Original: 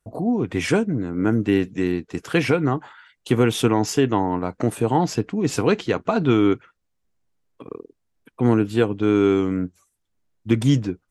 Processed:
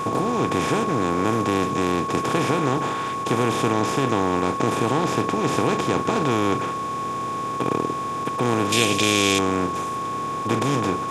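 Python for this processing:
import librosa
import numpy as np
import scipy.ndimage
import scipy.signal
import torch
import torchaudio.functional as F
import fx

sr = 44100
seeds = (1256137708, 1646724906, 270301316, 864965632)

y = fx.bin_compress(x, sr, power=0.2)
y = fx.curve_eq(y, sr, hz=(660.0, 1100.0, 2600.0), db=(0, -11, 14), at=(8.72, 9.39))
y = y + 10.0 ** (-15.0 / 20.0) * np.sin(2.0 * np.pi * 1100.0 * np.arange(len(y)) / sr)
y = y * 10.0 ** (-10.5 / 20.0)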